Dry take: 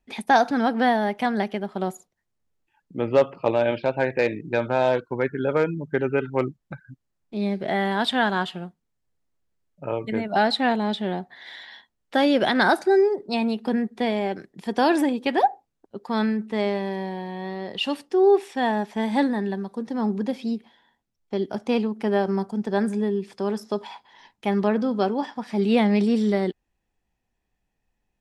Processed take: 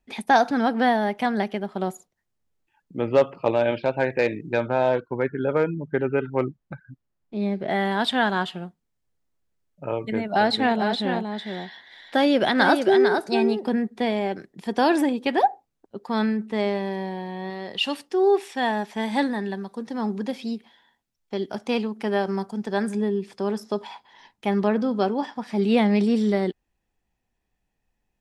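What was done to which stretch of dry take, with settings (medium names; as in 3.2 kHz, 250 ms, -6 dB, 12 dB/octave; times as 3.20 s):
4.62–7.70 s: treble shelf 3.7 kHz -9.5 dB
9.95–13.68 s: delay 451 ms -6 dB
17.50–22.95 s: tilt shelf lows -3 dB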